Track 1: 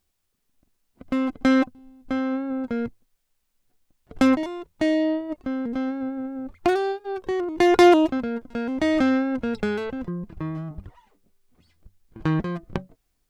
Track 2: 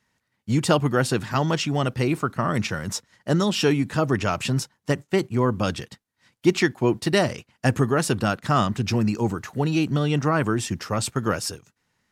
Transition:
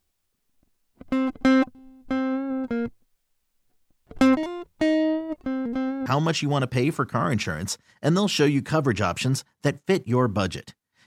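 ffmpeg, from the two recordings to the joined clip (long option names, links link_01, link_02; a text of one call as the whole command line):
ffmpeg -i cue0.wav -i cue1.wav -filter_complex "[0:a]apad=whole_dur=11.06,atrim=end=11.06,atrim=end=6.062[link_01];[1:a]atrim=start=1.298:end=6.3[link_02];[link_01][link_02]acrossfade=duration=0.004:curve1=hsin:curve2=hsin" out.wav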